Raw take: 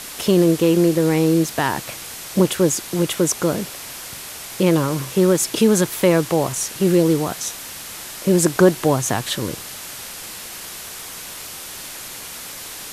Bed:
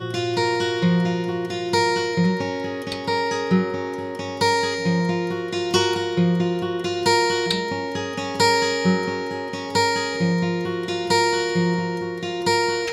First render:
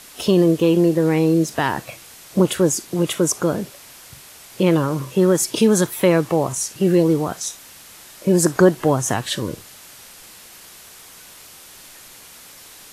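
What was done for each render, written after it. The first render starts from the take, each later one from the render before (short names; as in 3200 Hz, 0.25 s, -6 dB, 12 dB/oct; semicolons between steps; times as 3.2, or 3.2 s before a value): noise print and reduce 9 dB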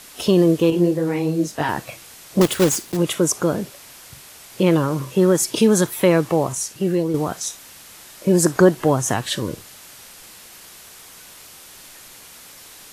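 0.7–1.69 detuned doubles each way 38 cents; 2.41–2.99 block floating point 3-bit; 6.4–7.14 fade out, to -7 dB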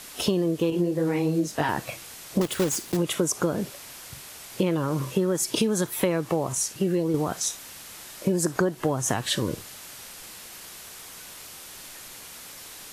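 compressor 10:1, threshold -20 dBFS, peak gain reduction 13 dB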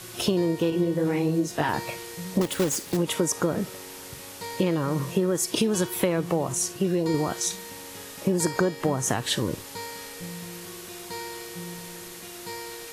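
add bed -18 dB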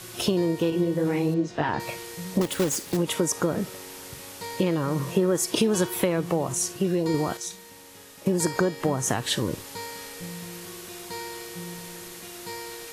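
1.34–1.8 air absorption 150 m; 5.06–6.01 bell 770 Hz +3 dB 2.7 oct; 7.37–8.26 gain -7 dB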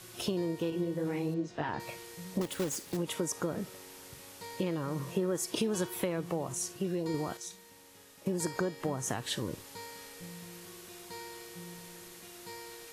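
gain -9 dB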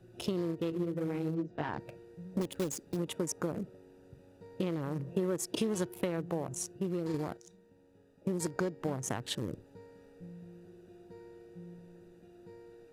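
Wiener smoothing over 41 samples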